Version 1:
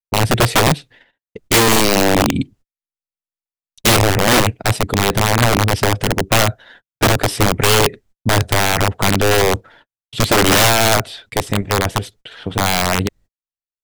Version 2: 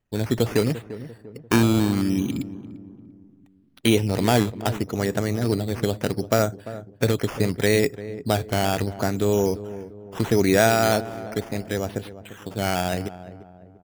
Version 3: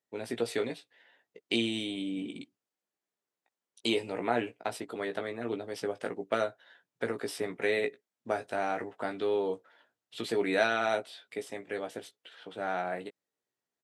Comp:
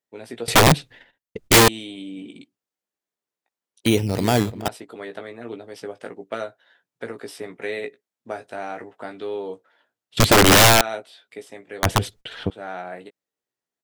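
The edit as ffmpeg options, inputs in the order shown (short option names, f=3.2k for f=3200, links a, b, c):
-filter_complex "[0:a]asplit=3[a][b][c];[2:a]asplit=5[d][e][f][g][h];[d]atrim=end=0.482[i];[a]atrim=start=0.478:end=1.682[j];[e]atrim=start=1.678:end=3.862[k];[1:a]atrim=start=3.858:end=4.682[l];[f]atrim=start=4.678:end=10.172[m];[b]atrim=start=10.168:end=10.812[n];[g]atrim=start=10.808:end=11.832[o];[c]atrim=start=11.828:end=12.502[p];[h]atrim=start=12.498[q];[i][j]acrossfade=d=0.004:c1=hsin:c2=hsin[r];[r][k]acrossfade=d=0.004:c1=hsin:c2=hsin[s];[s][l]acrossfade=d=0.004:c1=hsin:c2=hsin[t];[t][m]acrossfade=d=0.004:c1=hsin:c2=hsin[u];[u][n]acrossfade=d=0.004:c1=hsin:c2=hsin[v];[v][o]acrossfade=d=0.004:c1=hsin:c2=hsin[w];[w][p]acrossfade=d=0.004:c1=hsin:c2=hsin[x];[x][q]acrossfade=d=0.004:c1=hsin:c2=hsin"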